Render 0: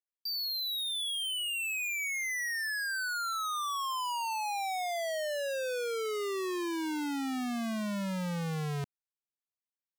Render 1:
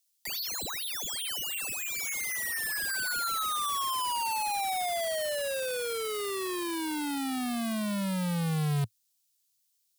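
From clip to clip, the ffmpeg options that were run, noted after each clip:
ffmpeg -i in.wav -filter_complex "[0:a]equalizer=frequency=110:width=1.5:gain=12,acrossover=split=390|700|3600[link_01][link_02][link_03][link_04];[link_04]aeval=exprs='0.0237*sin(PI/2*8.91*val(0)/0.0237)':channel_layout=same[link_05];[link_01][link_02][link_03][link_05]amix=inputs=4:normalize=0" out.wav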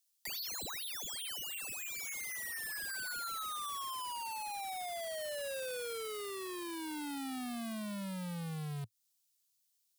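ffmpeg -i in.wav -af "acompressor=threshold=-35dB:ratio=6,volume=-3.5dB" out.wav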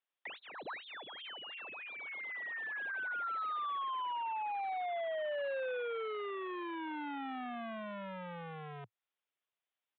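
ffmpeg -i in.wav -filter_complex "[0:a]highpass=frequency=110:width=0.5412,highpass=frequency=110:width=1.3066,acrossover=split=340 2500:gain=0.158 1 0.126[link_01][link_02][link_03];[link_01][link_02][link_03]amix=inputs=3:normalize=0,aresample=8000,aresample=44100,volume=5dB" out.wav

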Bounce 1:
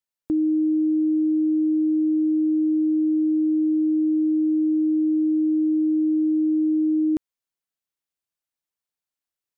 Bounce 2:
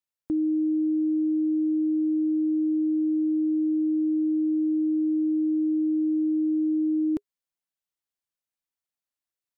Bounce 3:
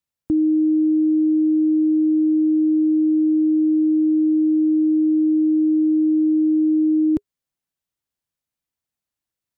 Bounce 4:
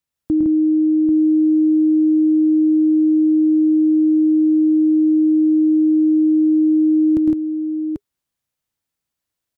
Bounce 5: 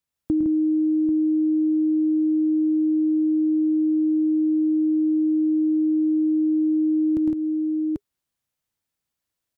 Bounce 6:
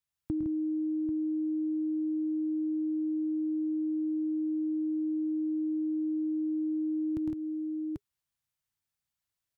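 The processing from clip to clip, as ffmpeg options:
ffmpeg -i in.wav -af "bandreject=frequency=410:width=12,volume=-3.5dB" out.wav
ffmpeg -i in.wav -af "equalizer=frequency=86:width=0.37:gain=10,volume=3dB" out.wav
ffmpeg -i in.wav -af "aecho=1:1:107|131|160|790:0.596|0.335|0.708|0.473,volume=1.5dB" out.wav
ffmpeg -i in.wav -af "acompressor=threshold=-17dB:ratio=10,volume=-1.5dB" out.wav
ffmpeg -i in.wav -af "equalizer=frequency=125:width_type=o:width=1:gain=3,equalizer=frequency=250:width_type=o:width=1:gain=-6,equalizer=frequency=500:width_type=o:width=1:gain=-6,volume=-4.5dB" out.wav

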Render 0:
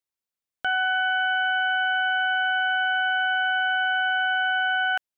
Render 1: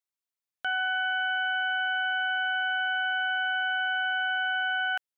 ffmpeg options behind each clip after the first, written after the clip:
ffmpeg -i in.wav -af "lowshelf=frequency=490:gain=-8.5,volume=-3.5dB" out.wav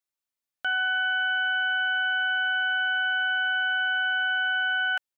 ffmpeg -i in.wav -af "aecho=1:1:3.4:0.31,volume=1dB" out.wav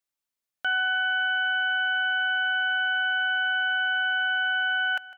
ffmpeg -i in.wav -af "aecho=1:1:154|308|462|616:0.133|0.068|0.0347|0.0177,volume=1dB" out.wav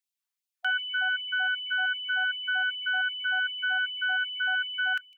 ffmpeg -i in.wav -af "afftfilt=real='re*gte(b*sr/1024,670*pow(2500/670,0.5+0.5*sin(2*PI*2.6*pts/sr)))':imag='im*gte(b*sr/1024,670*pow(2500/670,0.5+0.5*sin(2*PI*2.6*pts/sr)))':win_size=1024:overlap=0.75,volume=-1dB" out.wav

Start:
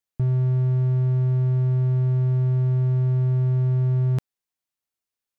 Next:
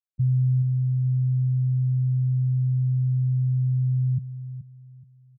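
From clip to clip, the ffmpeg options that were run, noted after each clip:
ffmpeg -i in.wav -af "afftfilt=real='re*gte(hypot(re,im),0.282)':imag='im*gte(hypot(re,im),0.282)':win_size=1024:overlap=0.75,aecho=1:1:426|852|1278:0.251|0.0754|0.0226" out.wav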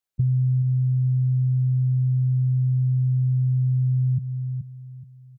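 ffmpeg -i in.wav -af "acompressor=threshold=-27dB:ratio=4,volume=7dB" out.wav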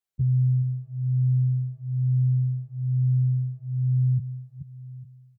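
ffmpeg -i in.wav -filter_complex "[0:a]asplit=2[link_01][link_02];[link_02]adelay=9.1,afreqshift=-1.1[link_03];[link_01][link_03]amix=inputs=2:normalize=1" out.wav

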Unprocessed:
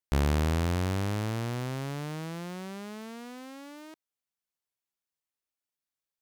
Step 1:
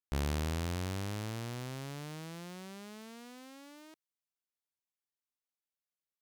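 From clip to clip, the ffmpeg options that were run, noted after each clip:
ffmpeg -i in.wav -af "adynamicequalizer=threshold=0.00282:dfrequency=2400:dqfactor=0.7:tfrequency=2400:tqfactor=0.7:attack=5:release=100:ratio=0.375:range=2.5:mode=boostabove:tftype=highshelf,volume=-8dB" out.wav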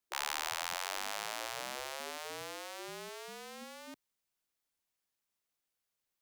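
ffmpeg -i in.wav -af "afftfilt=real='re*lt(hypot(re,im),0.02)':imag='im*lt(hypot(re,im),0.02)':win_size=1024:overlap=0.75,afreqshift=-42,volume=7dB" out.wav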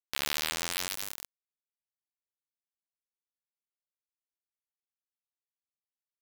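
ffmpeg -i in.wav -af "acrusher=bits=3:mix=0:aa=0.000001,volume=3.5dB" out.wav

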